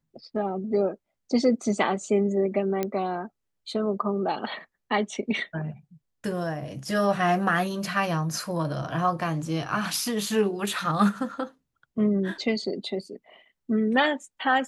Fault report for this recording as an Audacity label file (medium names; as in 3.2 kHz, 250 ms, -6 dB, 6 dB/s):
2.830000	2.830000	pop -13 dBFS